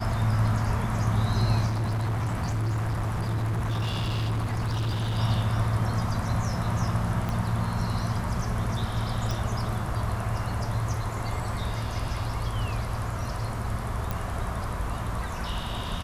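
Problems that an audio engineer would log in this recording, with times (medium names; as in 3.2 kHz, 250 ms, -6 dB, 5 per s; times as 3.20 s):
1.66–5.19 s: clipped -24.5 dBFS
7.29 s: pop -17 dBFS
9.31 s: pop
14.11 s: pop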